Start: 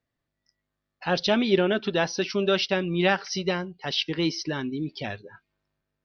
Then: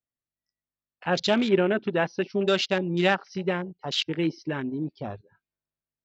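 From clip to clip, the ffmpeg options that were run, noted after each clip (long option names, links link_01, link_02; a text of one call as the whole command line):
ffmpeg -i in.wav -af "afwtdn=0.0224" out.wav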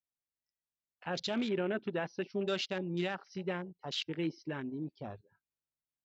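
ffmpeg -i in.wav -af "alimiter=limit=-16dB:level=0:latency=1:release=29,volume=-9dB" out.wav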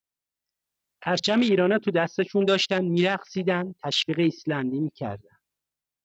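ffmpeg -i in.wav -af "dynaudnorm=framelen=100:gausssize=13:maxgain=8.5dB,volume=4dB" out.wav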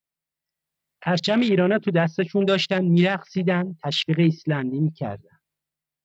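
ffmpeg -i in.wav -af "equalizer=frequency=160:width_type=o:width=0.33:gain=12,equalizer=frequency=630:width_type=o:width=0.33:gain=3,equalizer=frequency=2000:width_type=o:width=0.33:gain=4,equalizer=frequency=6300:width_type=o:width=0.33:gain=-5" -ar 44100 -c:a aac -b:a 192k out.aac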